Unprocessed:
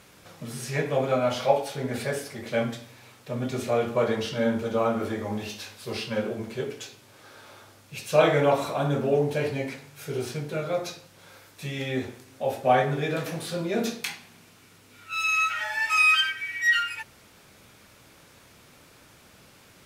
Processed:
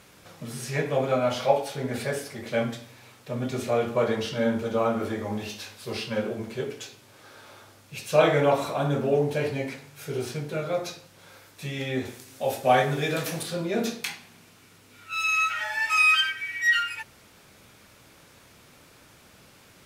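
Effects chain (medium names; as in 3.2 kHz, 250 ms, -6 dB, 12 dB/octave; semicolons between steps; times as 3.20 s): 12.05–13.43 s: treble shelf 3.3 kHz +9.5 dB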